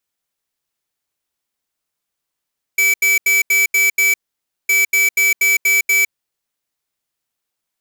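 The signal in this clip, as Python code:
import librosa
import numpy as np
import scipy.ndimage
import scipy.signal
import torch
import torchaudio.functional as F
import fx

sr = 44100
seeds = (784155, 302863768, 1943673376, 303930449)

y = fx.beep_pattern(sr, wave='square', hz=2300.0, on_s=0.16, off_s=0.08, beeps=6, pause_s=0.55, groups=2, level_db=-13.5)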